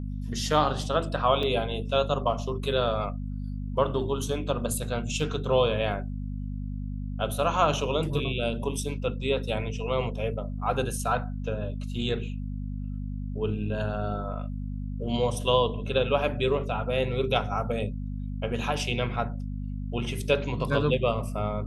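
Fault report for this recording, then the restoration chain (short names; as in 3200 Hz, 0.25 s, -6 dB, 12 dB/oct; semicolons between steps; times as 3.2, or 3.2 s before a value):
hum 50 Hz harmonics 5 -33 dBFS
1.43 gap 2.4 ms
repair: de-hum 50 Hz, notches 5; interpolate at 1.43, 2.4 ms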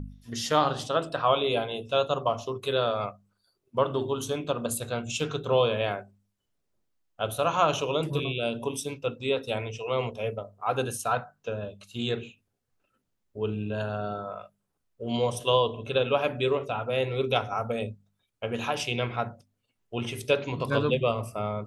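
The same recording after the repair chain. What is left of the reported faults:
none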